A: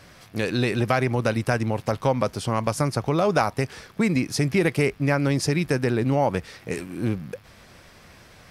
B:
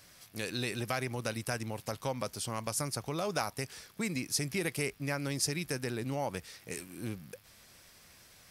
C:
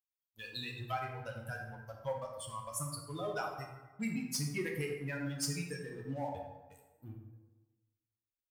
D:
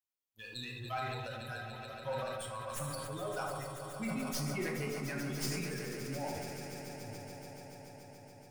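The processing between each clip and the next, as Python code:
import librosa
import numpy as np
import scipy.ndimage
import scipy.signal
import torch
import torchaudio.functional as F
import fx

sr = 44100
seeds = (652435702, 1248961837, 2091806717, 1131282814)

y1 = librosa.effects.preemphasis(x, coef=0.8, zi=[0.0])
y2 = fx.bin_expand(y1, sr, power=3.0)
y2 = fx.leveller(y2, sr, passes=2)
y2 = fx.rev_plate(y2, sr, seeds[0], rt60_s=1.2, hf_ratio=0.55, predelay_ms=0, drr_db=-0.5)
y2 = y2 * 10.0 ** (-7.5 / 20.0)
y3 = fx.tracing_dist(y2, sr, depth_ms=0.065)
y3 = fx.echo_swell(y3, sr, ms=143, loudest=5, wet_db=-12.5)
y3 = fx.sustainer(y3, sr, db_per_s=21.0)
y3 = y3 * 10.0 ** (-2.5 / 20.0)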